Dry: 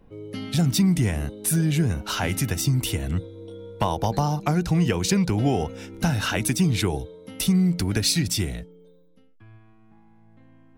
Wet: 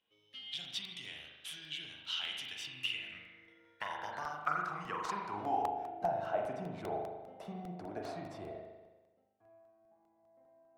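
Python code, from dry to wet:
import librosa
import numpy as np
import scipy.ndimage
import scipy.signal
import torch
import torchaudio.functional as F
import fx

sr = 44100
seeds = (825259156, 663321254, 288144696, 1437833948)

p1 = fx.high_shelf(x, sr, hz=3400.0, db=10.5, at=(3.66, 5.62))
p2 = fx.sample_hold(p1, sr, seeds[0], rate_hz=5700.0, jitter_pct=0)
p3 = p1 + F.gain(torch.from_numpy(p2), -12.0).numpy()
p4 = fx.rev_spring(p3, sr, rt60_s=1.2, pass_ms=(39,), chirp_ms=45, drr_db=0.5)
p5 = fx.filter_sweep_bandpass(p4, sr, from_hz=3200.0, to_hz=670.0, start_s=2.5, end_s=6.19, q=7.3)
y = fx.buffer_crackle(p5, sr, first_s=0.65, period_s=0.2, block=64, kind='repeat')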